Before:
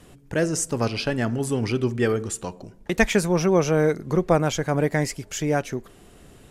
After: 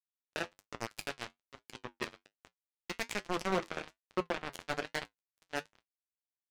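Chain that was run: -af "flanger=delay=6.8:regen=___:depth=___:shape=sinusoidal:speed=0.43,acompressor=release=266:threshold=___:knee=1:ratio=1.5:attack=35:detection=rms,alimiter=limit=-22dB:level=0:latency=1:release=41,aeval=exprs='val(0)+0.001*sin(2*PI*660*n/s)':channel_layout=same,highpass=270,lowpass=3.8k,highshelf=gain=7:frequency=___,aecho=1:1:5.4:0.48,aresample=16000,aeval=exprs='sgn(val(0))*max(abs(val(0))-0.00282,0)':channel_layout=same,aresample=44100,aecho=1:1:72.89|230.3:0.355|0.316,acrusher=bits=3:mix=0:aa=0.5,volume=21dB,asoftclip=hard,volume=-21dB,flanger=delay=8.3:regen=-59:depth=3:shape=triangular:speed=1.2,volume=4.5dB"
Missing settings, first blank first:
62, 5.1, -40dB, 2k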